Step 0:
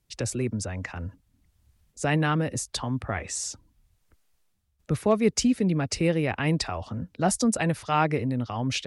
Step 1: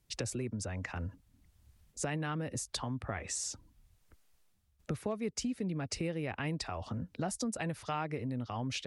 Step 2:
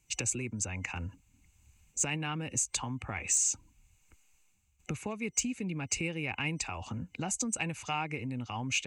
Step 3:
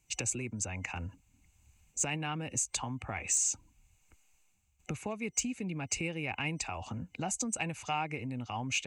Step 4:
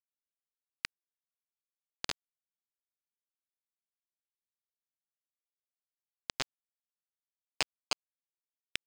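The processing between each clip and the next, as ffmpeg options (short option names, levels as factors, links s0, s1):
-af "acompressor=threshold=0.0178:ratio=4"
-af "superequalizer=7b=0.708:8b=0.562:9b=1.41:12b=3.55:15b=3.98,asoftclip=type=tanh:threshold=0.188"
-af "equalizer=f=690:w=2.6:g=5,volume=0.841"
-af "aresample=11025,acrusher=bits=3:mix=0:aa=0.000001,aresample=44100,asoftclip=type=tanh:threshold=0.0473,volume=3.55"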